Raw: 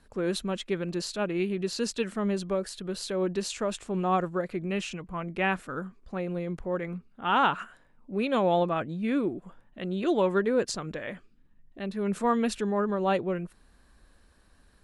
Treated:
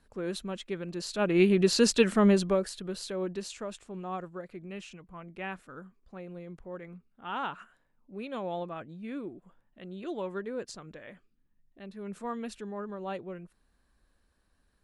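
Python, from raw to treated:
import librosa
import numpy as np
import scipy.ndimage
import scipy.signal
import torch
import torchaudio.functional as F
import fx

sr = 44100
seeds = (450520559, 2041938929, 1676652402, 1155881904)

y = fx.gain(x, sr, db=fx.line((0.96, -5.5), (1.43, 7.0), (2.28, 7.0), (2.76, -1.5), (4.0, -11.0)))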